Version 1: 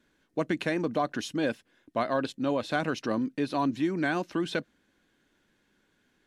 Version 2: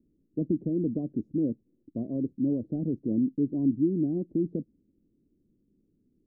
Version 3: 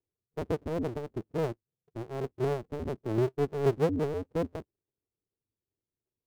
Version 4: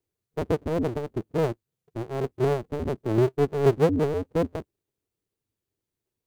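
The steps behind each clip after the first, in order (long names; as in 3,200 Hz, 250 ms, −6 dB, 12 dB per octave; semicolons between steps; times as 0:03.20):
inverse Chebyshev low-pass filter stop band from 1,200 Hz, stop band 60 dB; level +4.5 dB
sub-harmonics by changed cycles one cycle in 2, inverted; every bin expanded away from the loudest bin 1.5 to 1
notch filter 5,300 Hz, Q 25; level +6 dB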